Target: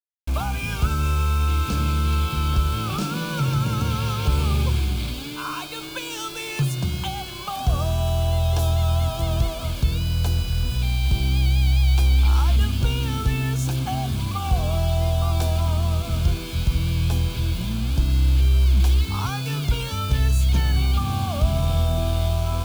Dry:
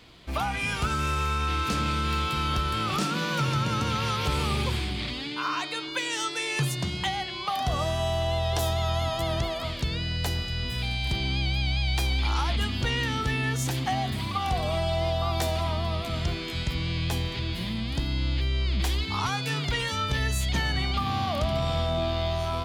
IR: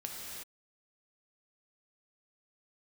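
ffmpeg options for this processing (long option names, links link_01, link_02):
-af "lowshelf=frequency=270:gain=4.5,acrusher=bits=5:mix=0:aa=0.000001,asuperstop=centerf=1900:order=4:qfactor=5.4,lowshelf=frequency=94:gain=11,volume=-1.5dB"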